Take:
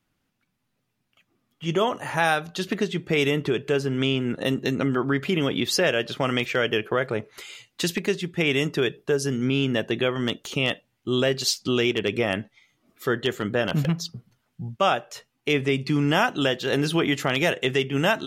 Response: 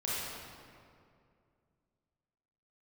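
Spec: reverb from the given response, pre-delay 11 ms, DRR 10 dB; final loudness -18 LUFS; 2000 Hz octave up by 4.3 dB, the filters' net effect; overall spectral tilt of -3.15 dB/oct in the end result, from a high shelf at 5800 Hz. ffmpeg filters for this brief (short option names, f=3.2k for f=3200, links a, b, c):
-filter_complex "[0:a]equalizer=f=2k:t=o:g=6,highshelf=f=5.8k:g=-3.5,asplit=2[a][b];[1:a]atrim=start_sample=2205,adelay=11[c];[b][c]afir=irnorm=-1:irlink=0,volume=-16dB[d];[a][d]amix=inputs=2:normalize=0,volume=4.5dB"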